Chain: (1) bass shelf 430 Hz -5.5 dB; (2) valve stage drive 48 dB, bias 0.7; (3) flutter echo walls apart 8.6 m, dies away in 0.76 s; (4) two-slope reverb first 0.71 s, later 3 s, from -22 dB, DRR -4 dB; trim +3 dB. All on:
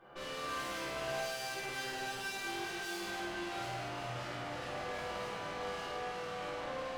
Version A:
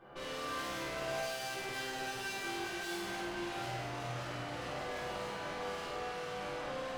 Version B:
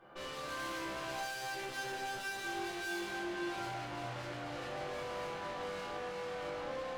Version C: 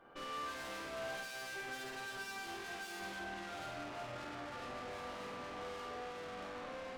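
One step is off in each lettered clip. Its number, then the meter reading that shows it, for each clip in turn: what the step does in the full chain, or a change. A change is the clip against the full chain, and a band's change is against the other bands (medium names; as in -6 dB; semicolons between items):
1, 125 Hz band +2.0 dB; 3, echo-to-direct 7.0 dB to 4.0 dB; 4, echo-to-direct 7.0 dB to -1.5 dB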